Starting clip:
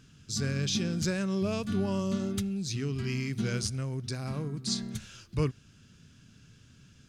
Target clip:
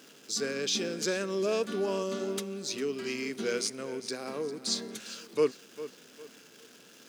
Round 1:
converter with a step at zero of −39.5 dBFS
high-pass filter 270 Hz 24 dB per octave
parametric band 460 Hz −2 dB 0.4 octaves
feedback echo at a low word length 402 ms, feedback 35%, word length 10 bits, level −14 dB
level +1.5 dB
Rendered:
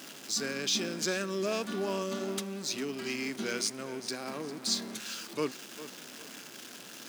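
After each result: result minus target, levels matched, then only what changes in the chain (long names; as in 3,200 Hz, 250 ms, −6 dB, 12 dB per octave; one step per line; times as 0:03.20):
converter with a step at zero: distortion +10 dB; 500 Hz band −3.5 dB
change: converter with a step at zero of −50.5 dBFS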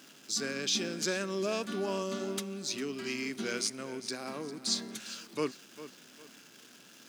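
500 Hz band −3.5 dB
change: parametric band 460 Hz +7.5 dB 0.4 octaves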